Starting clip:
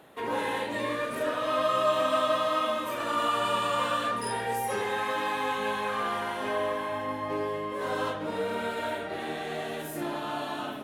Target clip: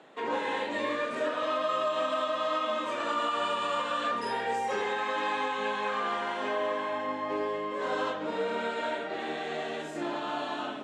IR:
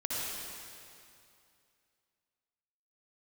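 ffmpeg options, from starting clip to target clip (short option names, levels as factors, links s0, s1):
-filter_complex "[0:a]lowpass=f=7600:t=q:w=4,acrossover=split=170 4900:gain=0.1 1 0.1[s0][s1][s2];[s0][s1][s2]amix=inputs=3:normalize=0,alimiter=limit=0.0944:level=0:latency=1:release=169"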